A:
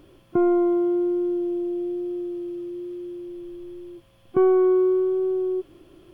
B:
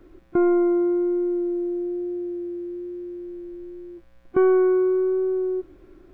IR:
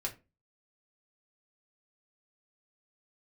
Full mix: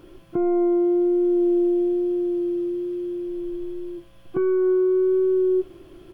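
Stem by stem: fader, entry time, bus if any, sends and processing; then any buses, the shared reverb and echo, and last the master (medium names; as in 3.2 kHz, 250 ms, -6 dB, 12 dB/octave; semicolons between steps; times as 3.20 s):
-1.5 dB, 0.00 s, send -4 dB, none
-1.0 dB, 6.9 ms, no send, none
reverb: on, RT60 0.30 s, pre-delay 3 ms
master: peak limiter -15.5 dBFS, peak gain reduction 10.5 dB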